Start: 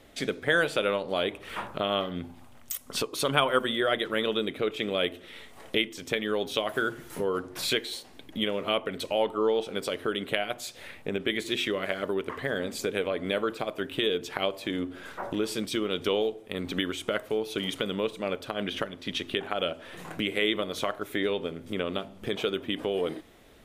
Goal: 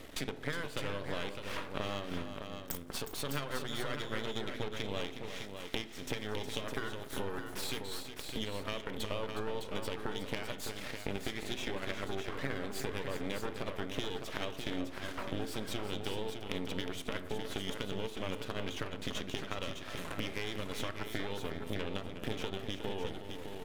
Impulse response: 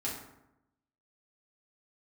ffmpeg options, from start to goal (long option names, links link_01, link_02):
-filter_complex "[0:a]equalizer=frequency=800:width=6.2:gain=-13.5,acompressor=threshold=-41dB:ratio=12,aeval=exprs='max(val(0),0)':channel_layout=same,aecho=1:1:363|608:0.335|0.447,asplit=2[link_01][link_02];[1:a]atrim=start_sample=2205,lowpass=4800[link_03];[link_02][link_03]afir=irnorm=-1:irlink=0,volume=-13.5dB[link_04];[link_01][link_04]amix=inputs=2:normalize=0,volume=7.5dB"